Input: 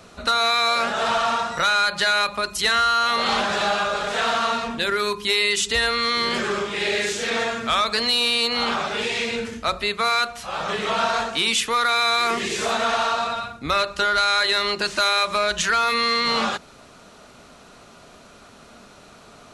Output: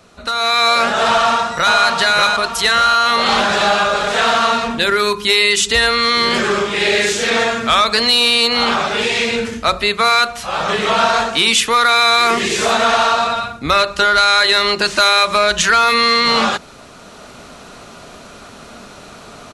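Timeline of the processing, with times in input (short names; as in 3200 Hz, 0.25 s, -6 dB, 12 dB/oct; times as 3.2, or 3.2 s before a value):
1.07–1.77 echo throw 0.59 s, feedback 45%, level -2.5 dB
whole clip: AGC gain up to 11.5 dB; gain -1.5 dB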